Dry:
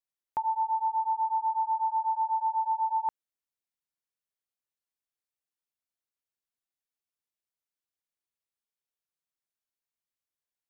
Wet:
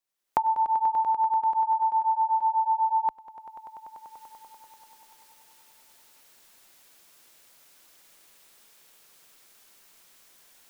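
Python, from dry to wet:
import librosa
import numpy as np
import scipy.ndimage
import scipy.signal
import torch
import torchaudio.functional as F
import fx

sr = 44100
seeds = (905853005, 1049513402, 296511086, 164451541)

y = fx.recorder_agc(x, sr, target_db=-31.0, rise_db_per_s=27.0, max_gain_db=30)
y = fx.peak_eq(y, sr, hz=62.0, db=-12.0, octaves=1.9)
y = fx.echo_swell(y, sr, ms=97, loudest=5, wet_db=-15)
y = y * 10.0 ** (4.5 / 20.0)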